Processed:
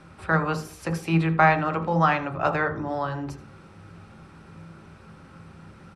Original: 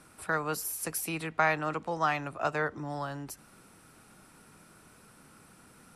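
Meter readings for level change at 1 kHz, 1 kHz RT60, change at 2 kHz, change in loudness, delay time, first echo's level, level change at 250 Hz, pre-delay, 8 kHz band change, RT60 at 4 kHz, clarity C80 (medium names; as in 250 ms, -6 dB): +8.0 dB, 0.40 s, +6.5 dB, +7.5 dB, 80 ms, -16.5 dB, +11.5 dB, 3 ms, no reading, 0.30 s, 14.5 dB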